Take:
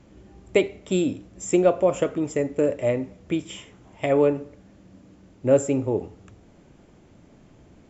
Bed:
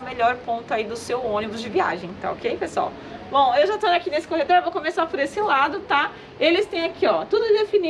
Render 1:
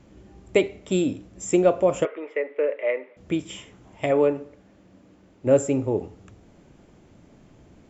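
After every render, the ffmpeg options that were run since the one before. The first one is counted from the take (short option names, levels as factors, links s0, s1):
-filter_complex "[0:a]asettb=1/sr,asplit=3[s0][s1][s2];[s0]atrim=end=2.054[s3];[s1]atrim=start=2.05:end=3.17,asetpts=PTS-STARTPTS,afade=t=in:d=0.004:c=qsin,afade=t=out:st=1.116:d=0.004:c=qsin,highpass=f=450:w=0.5412,highpass=f=450:w=1.3066,equalizer=f=460:t=q:w=4:g=3,equalizer=f=750:t=q:w=4:g=-7,equalizer=f=2100:t=q:w=4:g=8,lowpass=f=2900:w=0.5412,lowpass=f=2900:w=1.3066[s4];[s2]atrim=start=3.166[s5];[s3][s4]acrossfade=d=0.004:c1=hsin:c2=qsin[s6];[s6][s5]acrossfade=d=0.004:c1=qsin:c2=hsin,asettb=1/sr,asplit=3[s7][s8][s9];[s7]atrim=end=4.114[s10];[s8]atrim=start=4.11:end=5.47,asetpts=PTS-STARTPTS,afade=t=in:d=0.004:c=qsin,afade=t=out:st=1.356:d=0.004:c=qsin,bass=f=250:g=-6,treble=f=4000:g=-4[s11];[s9]atrim=start=5.466[s12];[s10][s11]acrossfade=d=0.004:c1=hsin:c2=qsin[s13];[s13][s12]acrossfade=d=0.004:c1=qsin:c2=hsin"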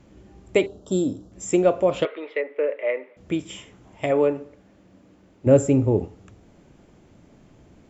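-filter_complex "[0:a]asettb=1/sr,asplit=3[s0][s1][s2];[s0]atrim=end=0.664[s3];[s1]atrim=start=0.66:end=1.32,asetpts=PTS-STARTPTS,afade=t=in:d=0.004:c=qsin,afade=t=out:st=0.656:d=0.004:c=qsin,asuperstop=centerf=2200:order=4:qfactor=0.92[s4];[s2]atrim=start=1.316[s5];[s3][s4]acrossfade=d=0.004:c1=hsin:c2=qsin[s6];[s6][s5]acrossfade=d=0.004:c1=qsin:c2=hsin,asettb=1/sr,asplit=3[s7][s8][s9];[s7]atrim=end=1.914[s10];[s8]atrim=start=1.91:end=2.41,asetpts=PTS-STARTPTS,afade=t=in:d=0.004:c=qsin,afade=t=out:st=0.496:d=0.004:c=qsin,lowpass=f=4000:t=q:w=7[s11];[s9]atrim=start=2.406[s12];[s10][s11]acrossfade=d=0.004:c1=hsin:c2=qsin[s13];[s13][s12]acrossfade=d=0.004:c1=qsin:c2=hsin,asettb=1/sr,asplit=3[s14][s15][s16];[s14]atrim=end=5.464[s17];[s15]atrim=start=5.46:end=6.05,asetpts=PTS-STARTPTS,afade=t=in:d=0.004:c=qsin,afade=t=out:st=0.586:d=0.004:c=qsin,lowshelf=f=240:g=11[s18];[s16]atrim=start=6.046[s19];[s17][s18]acrossfade=d=0.004:c1=hsin:c2=qsin[s20];[s20][s19]acrossfade=d=0.004:c1=qsin:c2=hsin"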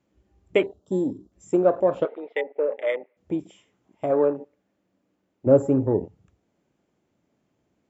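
-af "afwtdn=0.0282,highpass=f=200:p=1"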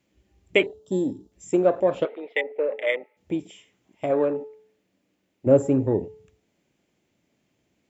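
-af "highshelf=f=1700:t=q:w=1.5:g=6,bandreject=f=433.2:t=h:w=4,bandreject=f=866.4:t=h:w=4,bandreject=f=1299.6:t=h:w=4"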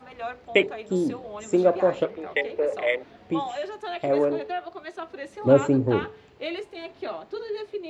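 -filter_complex "[1:a]volume=0.2[s0];[0:a][s0]amix=inputs=2:normalize=0"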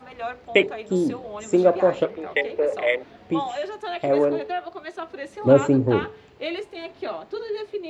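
-af "volume=1.33,alimiter=limit=0.708:level=0:latency=1"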